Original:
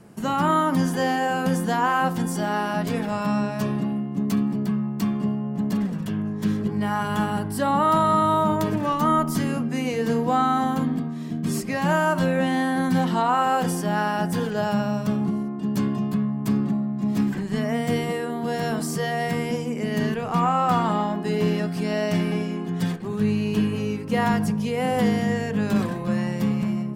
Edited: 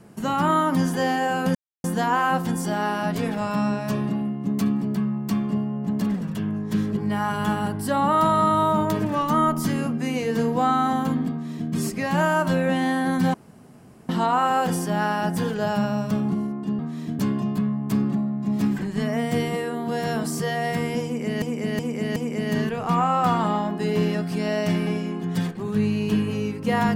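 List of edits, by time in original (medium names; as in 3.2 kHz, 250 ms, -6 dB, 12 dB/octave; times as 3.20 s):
1.55 s: insert silence 0.29 s
11.02–11.42 s: copy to 15.75 s
13.05 s: insert room tone 0.75 s
19.61–19.98 s: loop, 4 plays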